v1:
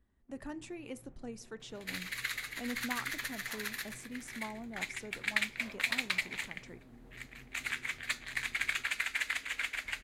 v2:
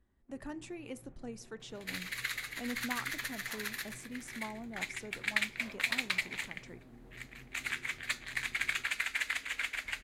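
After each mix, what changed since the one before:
first sound: send +8.5 dB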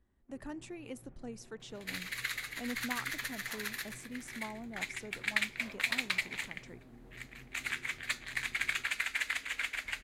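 speech: send -9.0 dB

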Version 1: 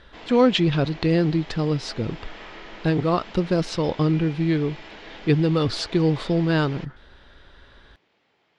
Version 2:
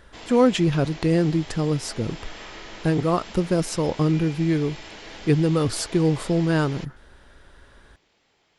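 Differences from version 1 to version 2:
speech: remove synth low-pass 3900 Hz, resonance Q 2.1; background: remove BPF 110–3400 Hz

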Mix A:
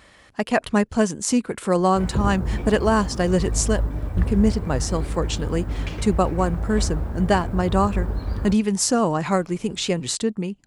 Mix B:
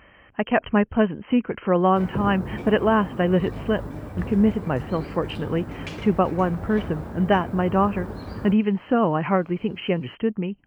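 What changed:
speech: add brick-wall FIR low-pass 3200 Hz; background: add HPF 130 Hz 12 dB/oct

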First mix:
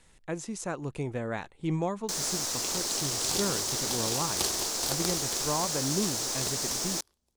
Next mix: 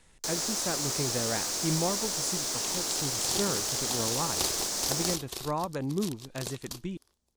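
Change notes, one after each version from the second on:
first sound: entry -1.85 s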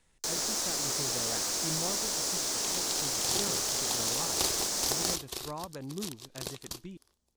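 speech -8.5 dB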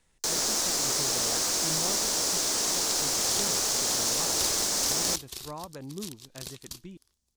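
first sound +4.5 dB; second sound: add bell 610 Hz -10 dB 2.5 oct

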